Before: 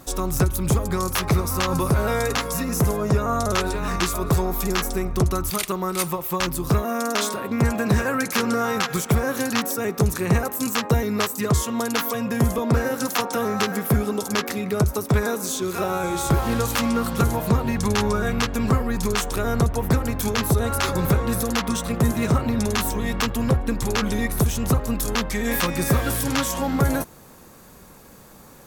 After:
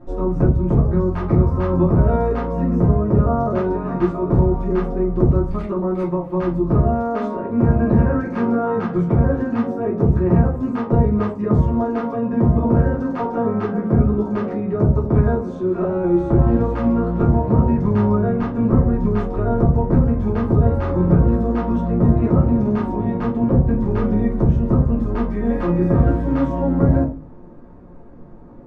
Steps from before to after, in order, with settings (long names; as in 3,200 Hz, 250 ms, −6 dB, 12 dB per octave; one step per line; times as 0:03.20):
Bessel low-pass filter 600 Hz, order 2
rectangular room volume 120 cubic metres, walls furnished, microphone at 2.8 metres
level −1 dB